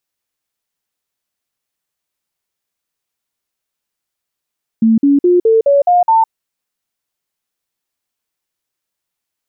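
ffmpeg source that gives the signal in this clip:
-f lavfi -i "aevalsrc='0.473*clip(min(mod(t,0.21),0.16-mod(t,0.21))/0.005,0,1)*sin(2*PI*224*pow(2,floor(t/0.21)/3)*mod(t,0.21))':d=1.47:s=44100"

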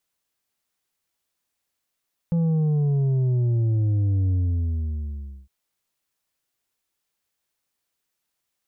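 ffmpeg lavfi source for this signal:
-f lavfi -i "aevalsrc='0.112*clip((3.16-t)/1.17,0,1)*tanh(1.88*sin(2*PI*170*3.16/log(65/170)*(exp(log(65/170)*t/3.16)-1)))/tanh(1.88)':d=3.16:s=44100"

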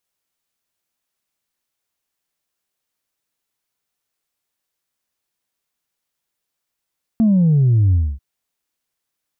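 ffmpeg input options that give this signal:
-f lavfi -i "aevalsrc='0.282*clip((0.99-t)/0.26,0,1)*tanh(1.06*sin(2*PI*230*0.99/log(65/230)*(exp(log(65/230)*t/0.99)-1)))/tanh(1.06)':d=0.99:s=44100"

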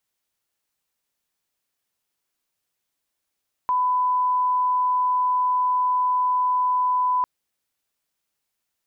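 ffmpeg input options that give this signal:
-f lavfi -i "sine=f=1000:d=3.55:r=44100,volume=0.06dB"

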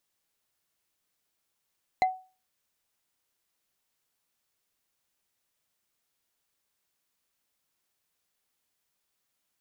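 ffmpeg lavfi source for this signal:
-f lavfi -i "aevalsrc='0.141*pow(10,-3*t/0.34)*sin(2*PI*748*t)+0.0562*pow(10,-3*t/0.101)*sin(2*PI*2062.2*t)+0.0224*pow(10,-3*t/0.045)*sin(2*PI*4042.2*t)+0.00891*pow(10,-3*t/0.025)*sin(2*PI*6681.9*t)+0.00355*pow(10,-3*t/0.015)*sin(2*PI*9978.3*t)':d=0.45:s=44100"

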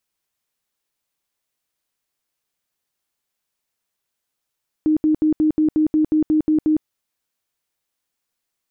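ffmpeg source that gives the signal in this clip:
-f lavfi -i "aevalsrc='0.224*sin(2*PI*309*mod(t,0.18))*lt(mod(t,0.18),33/309)':d=1.98:s=44100"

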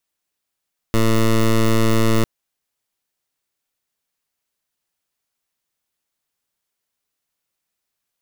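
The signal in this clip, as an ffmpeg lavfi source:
-f lavfi -i "aevalsrc='0.188*(2*lt(mod(112*t,1),0.14)-1)':d=1.3:s=44100"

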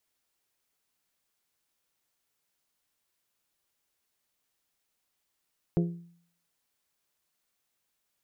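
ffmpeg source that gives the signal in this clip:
-f lavfi -i "aevalsrc='0.0944*pow(10,-3*t/0.58)*sin(2*PI*171*t)+0.0531*pow(10,-3*t/0.357)*sin(2*PI*342*t)+0.0299*pow(10,-3*t/0.314)*sin(2*PI*410.4*t)+0.0168*pow(10,-3*t/0.269)*sin(2*PI*513*t)+0.00944*pow(10,-3*t/0.22)*sin(2*PI*684*t)':d=0.89:s=44100"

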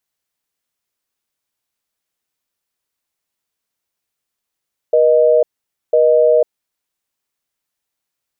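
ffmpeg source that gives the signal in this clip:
-f lavfi -i "aevalsrc='0.282*(sin(2*PI*480*t)+sin(2*PI*620*t))*clip(min(mod(t,1),0.5-mod(t,1))/0.005,0,1)':d=1.57:s=44100"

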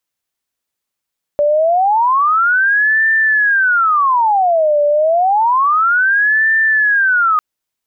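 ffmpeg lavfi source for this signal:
-f lavfi -i "aevalsrc='0.335*sin(2*PI*(1182.5*t-597.5/(2*PI*0.29)*sin(2*PI*0.29*t)))':d=6:s=44100"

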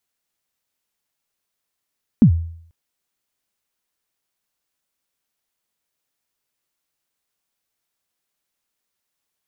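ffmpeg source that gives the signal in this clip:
-f lavfi -i "aevalsrc='0.631*pow(10,-3*t/0.62)*sin(2*PI*(260*0.089/log(83/260)*(exp(log(83/260)*min(t,0.089)/0.089)-1)+83*max(t-0.089,0)))':d=0.49:s=44100"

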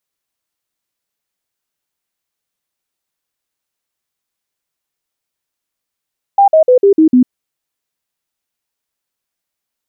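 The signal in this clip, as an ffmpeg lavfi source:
-f lavfi -i "aevalsrc='0.631*clip(min(mod(t,0.15),0.1-mod(t,0.15))/0.005,0,1)*sin(2*PI*797*pow(2,-floor(t/0.15)/3)*mod(t,0.15))':d=0.9:s=44100"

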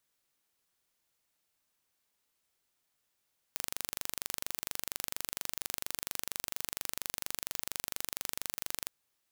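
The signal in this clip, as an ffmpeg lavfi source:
-f lavfi -i "aevalsrc='0.422*eq(mod(n,1815),0)':d=5.32:s=44100"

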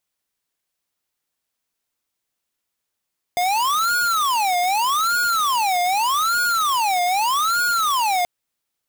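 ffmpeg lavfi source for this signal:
-f lavfi -i "aevalsrc='0.106*(2*lt(mod((1074*t-366/(2*PI*0.82)*sin(2*PI*0.82*t)),1),0.5)-1)':d=4.88:s=44100"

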